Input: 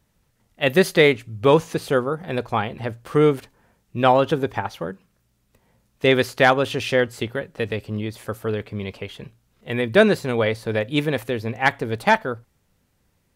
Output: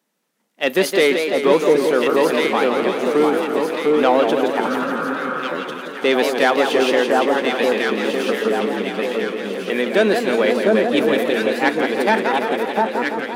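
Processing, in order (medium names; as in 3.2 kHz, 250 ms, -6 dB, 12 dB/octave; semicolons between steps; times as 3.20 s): waveshaping leveller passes 1; on a send: echo whose repeats swap between lows and highs 698 ms, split 1.3 kHz, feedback 64%, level -2 dB; on the sum: spectral replace 4.70–5.41 s, 300–1900 Hz after; steep high-pass 210 Hz 36 dB/octave; in parallel at +1 dB: peak limiter -10 dBFS, peak gain reduction 10.5 dB; on the sum: modulated delay 169 ms, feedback 69%, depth 175 cents, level -6.5 dB; trim -6.5 dB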